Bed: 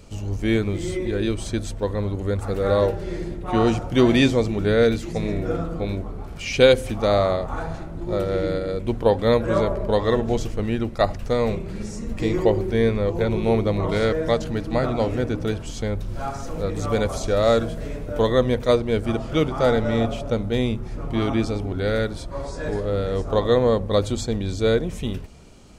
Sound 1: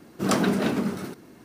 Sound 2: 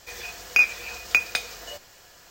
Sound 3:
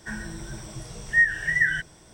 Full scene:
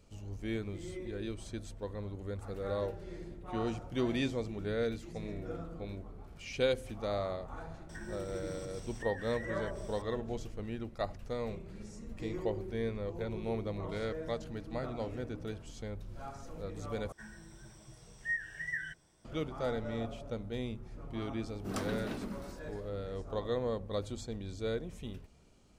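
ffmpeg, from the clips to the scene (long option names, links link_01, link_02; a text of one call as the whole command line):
ffmpeg -i bed.wav -i cue0.wav -i cue1.wav -i cue2.wav -filter_complex "[3:a]asplit=2[link_01][link_02];[0:a]volume=-16dB[link_03];[link_01]acompressor=threshold=-43dB:ratio=6:attack=3.2:release=140:knee=1:detection=peak[link_04];[link_03]asplit=2[link_05][link_06];[link_05]atrim=end=17.124[link_07];[link_02]atrim=end=2.13,asetpts=PTS-STARTPTS,volume=-16dB[link_08];[link_06]atrim=start=19.246[link_09];[link_04]atrim=end=2.13,asetpts=PTS-STARTPTS,volume=-2dB,afade=type=in:duration=0.004:curve=hsin,afade=type=out:start_time=2.126:duration=0.004:curve=hsin,adelay=7890[link_10];[1:a]atrim=end=1.44,asetpts=PTS-STARTPTS,volume=-15dB,afade=type=in:duration=0.004:curve=hsin,afade=type=out:start_time=1.436:duration=0.004:curve=hsin,adelay=21450[link_11];[link_07][link_08]acrossfade=duration=0.004:curve1=hsin:curve2=hsin[link_12];[link_12][link_09]acrossfade=duration=0.004:curve1=hsin:curve2=hsin[link_13];[link_13][link_10][link_11]amix=inputs=3:normalize=0" out.wav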